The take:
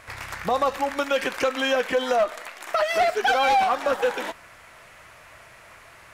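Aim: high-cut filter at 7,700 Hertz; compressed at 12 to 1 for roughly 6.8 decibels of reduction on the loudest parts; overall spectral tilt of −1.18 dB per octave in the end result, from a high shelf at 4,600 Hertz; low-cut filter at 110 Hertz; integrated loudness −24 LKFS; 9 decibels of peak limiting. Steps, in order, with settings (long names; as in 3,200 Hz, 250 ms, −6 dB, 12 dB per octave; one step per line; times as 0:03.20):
high-pass filter 110 Hz
low-pass filter 7,700 Hz
high-shelf EQ 4,600 Hz −5.5 dB
downward compressor 12 to 1, threshold −24 dBFS
level +8 dB
brickwall limiter −15 dBFS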